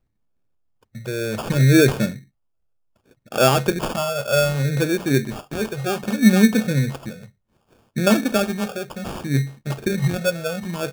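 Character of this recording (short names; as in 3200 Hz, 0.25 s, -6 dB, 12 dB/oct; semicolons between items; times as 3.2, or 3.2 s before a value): phasing stages 8, 0.65 Hz, lowest notch 270–1900 Hz; aliases and images of a low sample rate 2000 Hz, jitter 0%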